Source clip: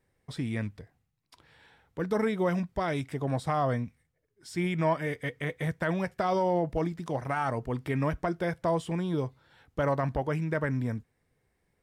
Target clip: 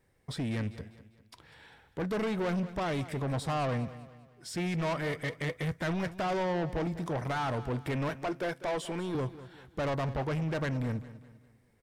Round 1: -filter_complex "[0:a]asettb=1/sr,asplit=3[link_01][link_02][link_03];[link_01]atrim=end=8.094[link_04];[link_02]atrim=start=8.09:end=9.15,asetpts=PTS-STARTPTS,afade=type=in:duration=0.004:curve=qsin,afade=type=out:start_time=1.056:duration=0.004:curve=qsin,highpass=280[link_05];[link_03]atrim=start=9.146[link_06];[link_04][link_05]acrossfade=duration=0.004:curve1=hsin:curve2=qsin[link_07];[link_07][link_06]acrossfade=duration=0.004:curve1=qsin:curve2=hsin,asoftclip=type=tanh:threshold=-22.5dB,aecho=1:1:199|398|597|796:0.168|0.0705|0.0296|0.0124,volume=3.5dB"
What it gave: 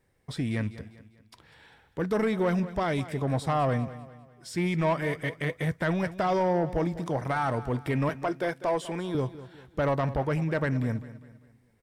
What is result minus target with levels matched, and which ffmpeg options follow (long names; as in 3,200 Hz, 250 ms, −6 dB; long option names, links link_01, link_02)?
soft clipping: distortion −9 dB
-filter_complex "[0:a]asettb=1/sr,asplit=3[link_01][link_02][link_03];[link_01]atrim=end=8.094[link_04];[link_02]atrim=start=8.09:end=9.15,asetpts=PTS-STARTPTS,afade=type=in:duration=0.004:curve=qsin,afade=type=out:start_time=1.056:duration=0.004:curve=qsin,highpass=280[link_05];[link_03]atrim=start=9.146[link_06];[link_04][link_05]acrossfade=duration=0.004:curve1=hsin:curve2=qsin[link_07];[link_07][link_06]acrossfade=duration=0.004:curve1=qsin:curve2=hsin,asoftclip=type=tanh:threshold=-32dB,aecho=1:1:199|398|597|796:0.168|0.0705|0.0296|0.0124,volume=3.5dB"